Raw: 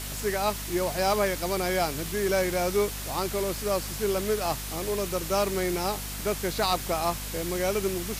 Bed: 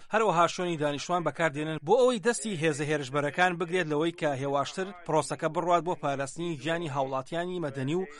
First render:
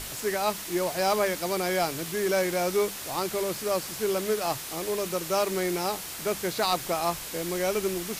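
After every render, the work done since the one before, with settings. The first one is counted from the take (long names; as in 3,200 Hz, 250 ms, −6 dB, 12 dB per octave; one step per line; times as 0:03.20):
mains-hum notches 50/100/150/200/250 Hz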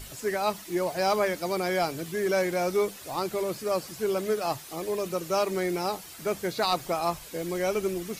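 broadband denoise 10 dB, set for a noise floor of −38 dBFS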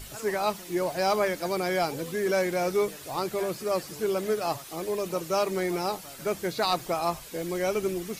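mix in bed −19.5 dB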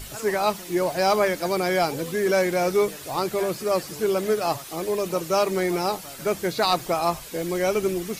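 level +4.5 dB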